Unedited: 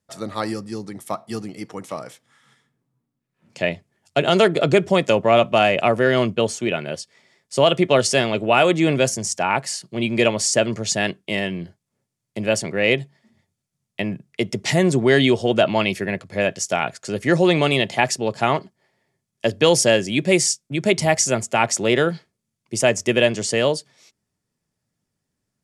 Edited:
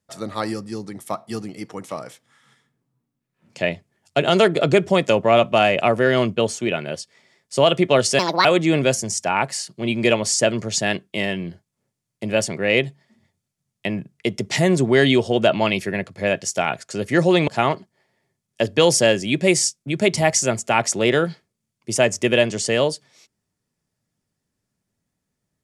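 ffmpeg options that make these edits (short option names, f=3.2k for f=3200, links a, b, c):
-filter_complex "[0:a]asplit=4[a][b][c][d];[a]atrim=end=8.194[e];[b]atrim=start=8.19:end=8.59,asetpts=PTS-STARTPTS,asetrate=68355,aresample=44100[f];[c]atrim=start=8.586:end=17.622[g];[d]atrim=start=18.318[h];[e][f]acrossfade=d=0.004:c1=hsin:c2=hsin[i];[i][g]acrossfade=d=0.004:c1=hsin:c2=hsin[j];[j][h]acrossfade=d=0.004:c1=hsin:c2=hsin"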